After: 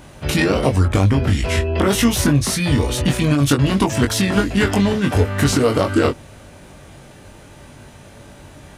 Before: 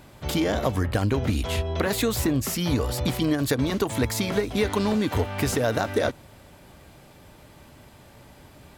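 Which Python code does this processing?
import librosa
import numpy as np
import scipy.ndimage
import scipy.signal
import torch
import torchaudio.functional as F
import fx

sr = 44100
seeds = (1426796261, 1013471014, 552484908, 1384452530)

y = fx.formant_shift(x, sr, semitones=-4)
y = fx.doubler(y, sr, ms=21.0, db=-5.0)
y = y * 10.0 ** (7.0 / 20.0)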